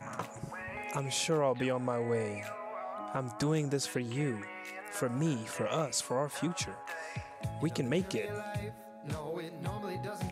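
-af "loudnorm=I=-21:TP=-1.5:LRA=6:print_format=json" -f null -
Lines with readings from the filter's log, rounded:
"input_i" : "-35.5",
"input_tp" : "-18.5",
"input_lra" : "3.9",
"input_thresh" : "-45.6",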